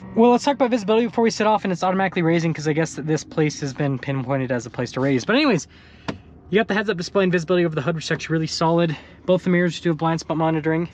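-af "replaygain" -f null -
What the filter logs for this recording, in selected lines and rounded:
track_gain = +1.1 dB
track_peak = 0.419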